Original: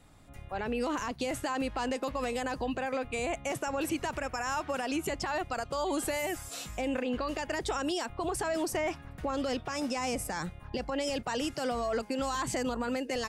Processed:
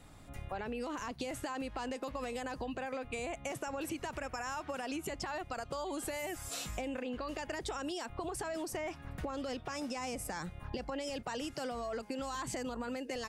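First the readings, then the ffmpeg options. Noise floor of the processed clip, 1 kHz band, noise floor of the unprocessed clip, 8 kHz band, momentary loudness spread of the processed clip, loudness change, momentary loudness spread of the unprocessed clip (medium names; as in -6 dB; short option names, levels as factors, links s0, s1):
-52 dBFS, -6.5 dB, -50 dBFS, -5.0 dB, 2 LU, -6.5 dB, 4 LU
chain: -af "acompressor=threshold=0.0112:ratio=6,volume=1.33"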